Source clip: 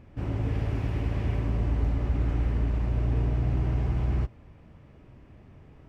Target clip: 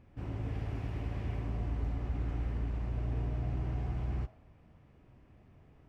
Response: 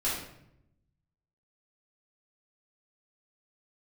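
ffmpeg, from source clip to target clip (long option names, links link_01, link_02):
-filter_complex "[0:a]asplit=2[link_01][link_02];[link_02]highpass=frequency=670:width_type=q:width=4.9[link_03];[1:a]atrim=start_sample=2205[link_04];[link_03][link_04]afir=irnorm=-1:irlink=0,volume=-23.5dB[link_05];[link_01][link_05]amix=inputs=2:normalize=0,volume=-8.5dB"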